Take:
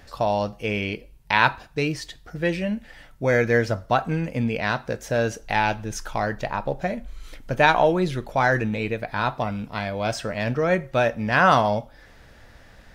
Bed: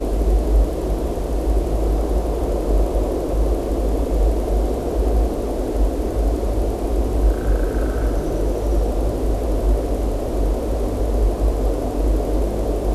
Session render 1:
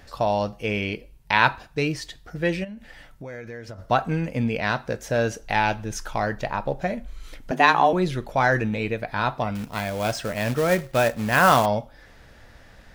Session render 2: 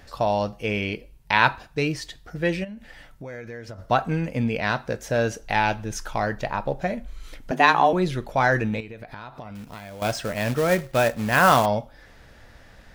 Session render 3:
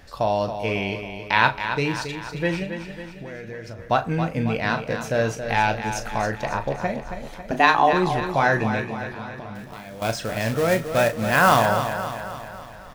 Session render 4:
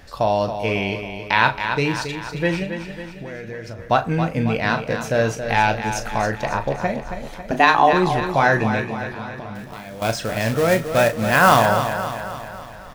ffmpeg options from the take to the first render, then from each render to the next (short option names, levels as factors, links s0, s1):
-filter_complex "[0:a]asplit=3[s0][s1][s2];[s0]afade=t=out:st=2.63:d=0.02[s3];[s1]acompressor=threshold=0.0178:ratio=6:attack=3.2:release=140:knee=1:detection=peak,afade=t=in:st=2.63:d=0.02,afade=t=out:st=3.78:d=0.02[s4];[s2]afade=t=in:st=3.78:d=0.02[s5];[s3][s4][s5]amix=inputs=3:normalize=0,asettb=1/sr,asplit=3[s6][s7][s8];[s6]atrim=end=7.514[s9];[s7]atrim=start=7.51:end=7.93,asetpts=PTS-STARTPTS,afade=t=in:d=0.004:c=qsin,afade=t=out:st=0.416:d=0.004:c=qsin,afreqshift=130[s10];[s8]atrim=start=7.926[s11];[s9][s10]acrossfade=d=0.004:c1=hsin:c2=qsin[s12];[s12][s11]acrossfade=d=0.004:c1=qsin:c2=hsin,asettb=1/sr,asplit=3[s13][s14][s15];[s13]atrim=end=9.554[s16];[s14]atrim=start=9.55:end=11.66,asetpts=PTS-STARTPTS,afade=t=in:d=0.004:c=qsin,afade=t=out:st=2.106:d=0.004:c=qsin,acrusher=bits=3:mode=log:mix=0:aa=0.000001[s17];[s15]atrim=start=11.656[s18];[s16][s17]acrossfade=d=0.004:c1=hsin:c2=qsin[s19];[s19][s18]acrossfade=d=0.004:c1=qsin:c2=hsin"
-filter_complex "[0:a]asettb=1/sr,asplit=3[s0][s1][s2];[s0]atrim=end=8.804[s3];[s1]atrim=start=8.8:end=10.02,asetpts=PTS-STARTPTS,afade=t=in:d=0.004:c=qsin,afade=t=out:st=1.216:d=0.004:c=qsin,acompressor=threshold=0.02:ratio=12:attack=3.2:release=140:knee=1:detection=peak[s4];[s2]atrim=start=10.016[s5];[s3][s4]acrossfade=d=0.004:c1=hsin:c2=qsin[s6];[s6][s5]acrossfade=d=0.004:c1=qsin:c2=hsin"
-filter_complex "[0:a]asplit=2[s0][s1];[s1]adelay=36,volume=0.316[s2];[s0][s2]amix=inputs=2:normalize=0,aecho=1:1:274|548|822|1096|1370|1644:0.355|0.195|0.107|0.059|0.0325|0.0179"
-af "volume=1.41,alimiter=limit=0.891:level=0:latency=1"